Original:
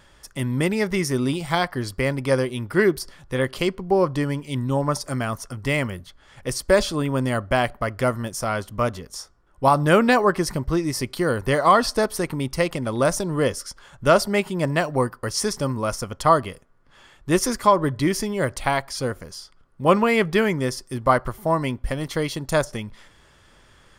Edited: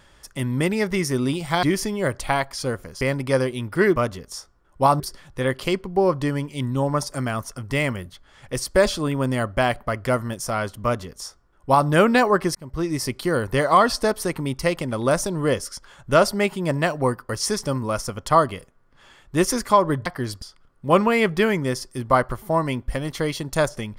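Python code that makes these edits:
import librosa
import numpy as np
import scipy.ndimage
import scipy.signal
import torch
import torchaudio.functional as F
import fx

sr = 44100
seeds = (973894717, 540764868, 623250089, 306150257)

y = fx.edit(x, sr, fx.swap(start_s=1.63, length_s=0.36, other_s=18.0, other_length_s=1.38),
    fx.duplicate(start_s=8.78, length_s=1.04, to_s=2.94),
    fx.fade_in_span(start_s=10.49, length_s=0.38), tone=tone)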